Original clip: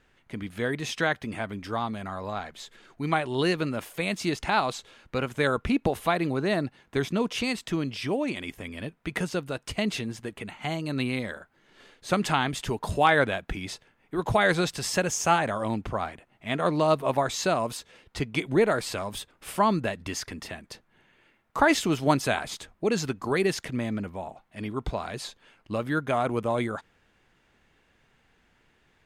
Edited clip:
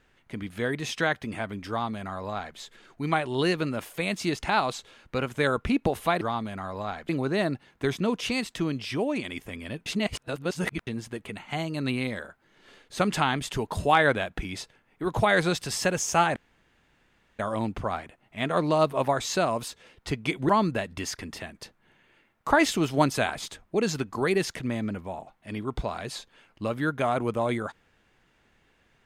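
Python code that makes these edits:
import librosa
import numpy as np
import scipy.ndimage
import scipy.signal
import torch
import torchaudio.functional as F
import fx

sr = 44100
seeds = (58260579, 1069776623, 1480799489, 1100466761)

y = fx.edit(x, sr, fx.duplicate(start_s=1.69, length_s=0.88, to_s=6.21),
    fx.reverse_span(start_s=8.98, length_s=1.01),
    fx.insert_room_tone(at_s=15.48, length_s=1.03),
    fx.cut(start_s=18.58, length_s=1.0), tone=tone)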